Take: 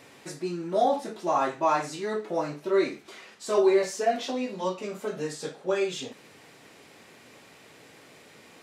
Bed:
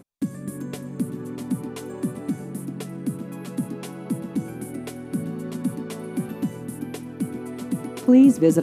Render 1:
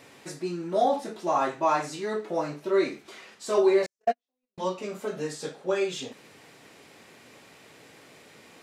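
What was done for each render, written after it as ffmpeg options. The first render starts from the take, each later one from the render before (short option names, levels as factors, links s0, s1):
-filter_complex "[0:a]asettb=1/sr,asplit=3[s0][s1][s2];[s0]atrim=end=3.864[s3];[s1]atrim=start=3.86:end=4.58,asetpts=PTS-STARTPTS,afade=t=in:d=0.004:c=qsin,afade=t=out:st=0.716:d=0.004:c=qsin,agate=range=0.00126:threshold=0.0708:ratio=16:release=100:detection=peak[s4];[s2]atrim=start=4.576[s5];[s3][s4]acrossfade=d=0.004:c1=hsin:c2=qsin[s6];[s6][s5]acrossfade=d=0.004:c1=qsin:c2=hsin"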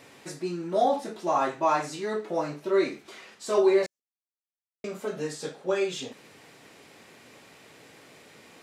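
-filter_complex "[0:a]asplit=3[s0][s1][s2];[s0]atrim=end=4,asetpts=PTS-STARTPTS,afade=t=out:st=3.996:d=0.004:c=hsin[s3];[s1]atrim=start=4:end=4.84,asetpts=PTS-STARTPTS,volume=0[s4];[s2]atrim=start=4.84,asetpts=PTS-STARTPTS,afade=t=in:d=0.004:c=hsin[s5];[s3][s4][s5]concat=n=3:v=0:a=1"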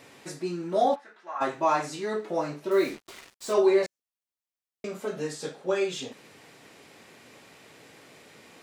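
-filter_complex "[0:a]asplit=3[s0][s1][s2];[s0]afade=t=out:st=0.94:d=0.02[s3];[s1]bandpass=f=1600:t=q:w=2.8,afade=t=in:st=0.94:d=0.02,afade=t=out:st=1.4:d=0.02[s4];[s2]afade=t=in:st=1.4:d=0.02[s5];[s3][s4][s5]amix=inputs=3:normalize=0,asettb=1/sr,asplit=3[s6][s7][s8];[s6]atrim=end=2.714[s9];[s7]atrim=start=2.71:end=3.53,asetpts=PTS-STARTPTS,afade=t=in:d=0.004:c=qsin,afade=t=out:st=0.816:d=0.004:c=qsin,acrusher=bits=6:mix=0:aa=0.5[s10];[s8]atrim=start=3.526[s11];[s9][s10]acrossfade=d=0.004:c1=hsin:c2=qsin[s12];[s12][s11]acrossfade=d=0.004:c1=qsin:c2=hsin"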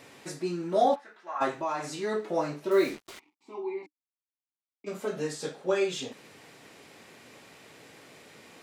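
-filter_complex "[0:a]asettb=1/sr,asplit=3[s0][s1][s2];[s0]atrim=end=1.524[s3];[s1]atrim=start=1.52:end=1.99,asetpts=PTS-STARTPTS,afade=t=in:d=0.004:c=qsin,afade=t=out:st=0.466:d=0.004:c=qsin,acompressor=threshold=0.0224:ratio=2:attack=3.2:release=140:knee=1:detection=peak[s4];[s2]atrim=start=1.986[s5];[s3][s4]acrossfade=d=0.004:c1=hsin:c2=qsin[s6];[s6][s5]acrossfade=d=0.004:c1=qsin:c2=hsin,asplit=3[s7][s8][s9];[s7]afade=t=out:st=3.18:d=0.02[s10];[s8]asplit=3[s11][s12][s13];[s11]bandpass=f=300:t=q:w=8,volume=1[s14];[s12]bandpass=f=870:t=q:w=8,volume=0.501[s15];[s13]bandpass=f=2240:t=q:w=8,volume=0.355[s16];[s14][s15][s16]amix=inputs=3:normalize=0,afade=t=in:st=3.18:d=0.02,afade=t=out:st=4.86:d=0.02[s17];[s9]afade=t=in:st=4.86:d=0.02[s18];[s10][s17][s18]amix=inputs=3:normalize=0"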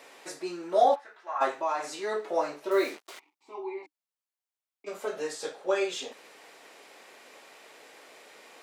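-af "highpass=450,equalizer=f=660:w=0.64:g=3"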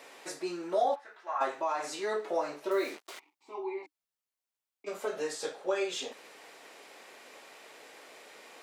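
-af "acompressor=threshold=0.0355:ratio=2"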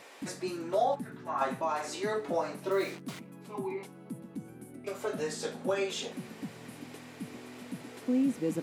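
-filter_complex "[1:a]volume=0.188[s0];[0:a][s0]amix=inputs=2:normalize=0"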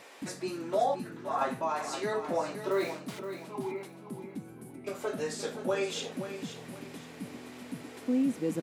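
-af "aecho=1:1:522|1044|1566:0.316|0.0949|0.0285"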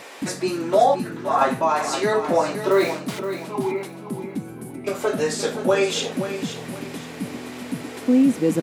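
-af "volume=3.76"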